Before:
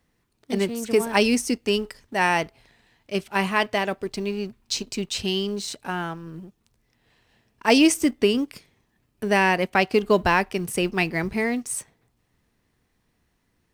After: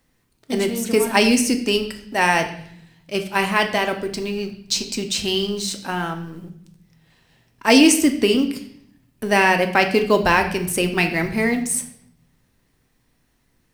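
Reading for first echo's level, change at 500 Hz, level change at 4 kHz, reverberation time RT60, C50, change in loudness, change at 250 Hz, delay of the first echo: no echo audible, +3.0 dB, +5.0 dB, 0.65 s, 10.5 dB, +4.0 dB, +4.0 dB, no echo audible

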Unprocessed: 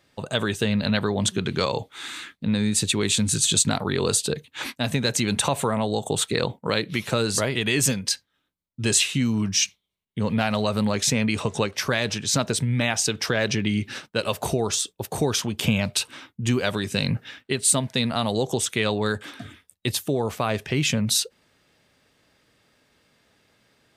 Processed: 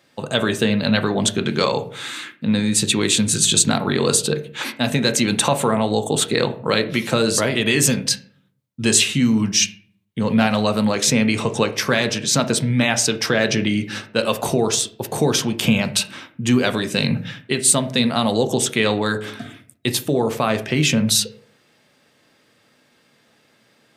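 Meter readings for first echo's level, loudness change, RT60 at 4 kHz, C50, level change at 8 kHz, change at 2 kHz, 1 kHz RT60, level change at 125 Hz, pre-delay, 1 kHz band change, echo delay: no echo audible, +5.0 dB, 0.35 s, 14.0 dB, +4.5 dB, +5.0 dB, 0.45 s, +2.5 dB, 4 ms, +5.0 dB, no echo audible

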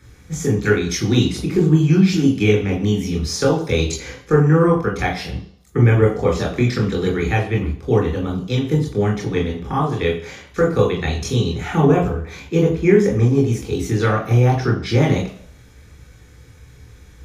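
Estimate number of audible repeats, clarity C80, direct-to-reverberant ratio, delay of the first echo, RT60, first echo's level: no echo audible, 11.5 dB, 0.0 dB, no echo audible, 0.55 s, no echo audible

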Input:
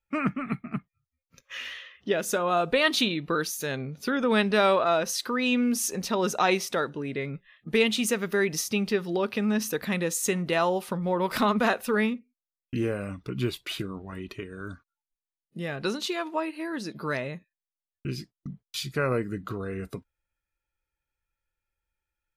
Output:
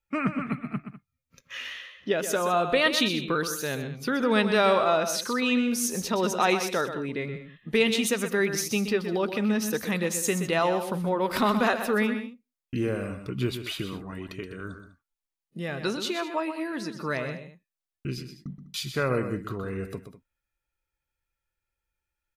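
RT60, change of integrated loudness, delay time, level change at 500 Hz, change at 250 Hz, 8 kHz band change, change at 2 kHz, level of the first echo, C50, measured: no reverb audible, +0.5 dB, 125 ms, +0.5 dB, +0.5 dB, +0.5 dB, +0.5 dB, −9.5 dB, no reverb audible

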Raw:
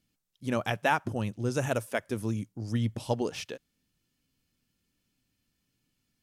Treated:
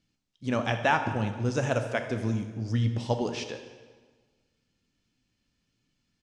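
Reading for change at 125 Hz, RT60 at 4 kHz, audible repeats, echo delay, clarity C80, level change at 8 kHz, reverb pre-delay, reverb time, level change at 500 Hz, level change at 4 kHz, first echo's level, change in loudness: +3.5 dB, 1.2 s, 1, 79 ms, 10.0 dB, −1.0 dB, 11 ms, 1.5 s, +2.0 dB, +2.5 dB, −15.5 dB, +2.5 dB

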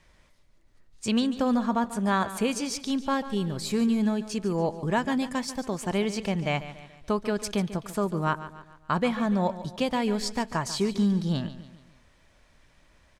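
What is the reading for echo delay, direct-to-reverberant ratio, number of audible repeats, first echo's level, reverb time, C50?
143 ms, no reverb audible, 4, −14.0 dB, no reverb audible, no reverb audible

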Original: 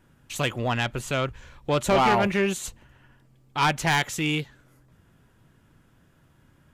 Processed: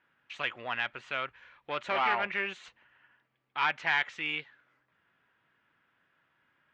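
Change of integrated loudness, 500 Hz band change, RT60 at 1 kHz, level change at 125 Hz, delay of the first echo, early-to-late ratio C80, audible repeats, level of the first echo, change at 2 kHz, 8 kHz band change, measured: −7.0 dB, −13.5 dB, no reverb audible, −24.5 dB, no echo audible, no reverb audible, no echo audible, no echo audible, −2.5 dB, below −25 dB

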